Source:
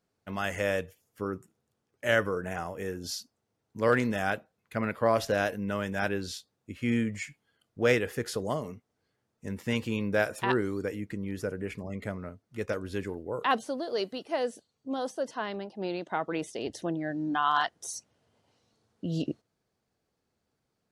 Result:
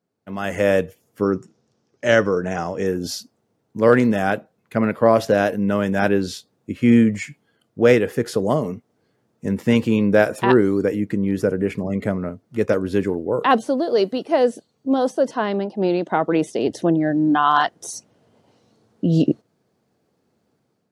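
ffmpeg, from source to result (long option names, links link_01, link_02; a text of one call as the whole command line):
ffmpeg -i in.wav -filter_complex "[0:a]asettb=1/sr,asplit=3[link_01][link_02][link_03];[link_01]atrim=end=1.224[link_04];[link_02]atrim=start=1.22:end=2.87,asetpts=PTS-STARTPTS,afade=type=in:duration=0.004:curve=qsin,afade=type=out:start_time=1.646:duration=0.004:curve=qsin,lowpass=frequency=5700:width_type=q:width=3.3[link_05];[link_03]atrim=start=2.866[link_06];[link_04][link_05]acrossfade=duration=0.004:curve1=hsin:curve2=qsin[link_07];[link_07][link_06]acrossfade=duration=0.004:curve1=qsin:curve2=hsin,highpass=140,tiltshelf=frequency=810:gain=5,dynaudnorm=framelen=190:gausssize=5:maxgain=11.5dB" out.wav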